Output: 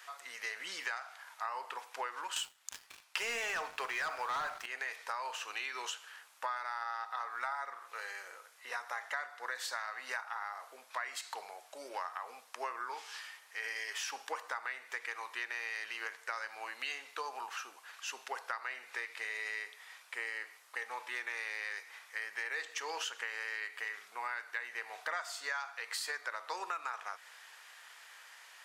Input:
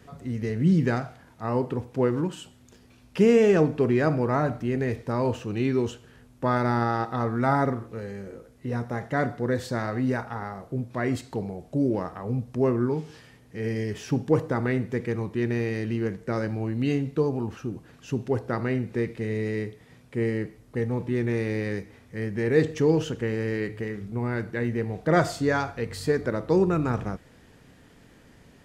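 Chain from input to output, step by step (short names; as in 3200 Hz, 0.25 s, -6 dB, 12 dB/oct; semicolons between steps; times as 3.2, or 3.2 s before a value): HPF 960 Hz 24 dB/oct; 2.36–4.66 sample leveller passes 3; compressor 8:1, threshold -42 dBFS, peak gain reduction 19.5 dB; gain +6.5 dB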